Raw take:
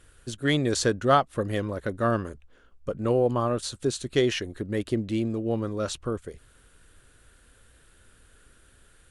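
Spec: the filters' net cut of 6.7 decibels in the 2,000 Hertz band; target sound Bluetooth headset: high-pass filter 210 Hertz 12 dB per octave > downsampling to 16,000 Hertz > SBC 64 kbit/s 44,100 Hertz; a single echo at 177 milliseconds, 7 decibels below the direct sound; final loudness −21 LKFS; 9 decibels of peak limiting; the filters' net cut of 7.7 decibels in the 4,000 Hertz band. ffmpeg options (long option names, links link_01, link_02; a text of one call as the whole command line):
ffmpeg -i in.wav -af "equalizer=frequency=2000:width_type=o:gain=-7,equalizer=frequency=4000:width_type=o:gain=-7.5,alimiter=limit=-18dB:level=0:latency=1,highpass=210,aecho=1:1:177:0.447,aresample=16000,aresample=44100,volume=9.5dB" -ar 44100 -c:a sbc -b:a 64k out.sbc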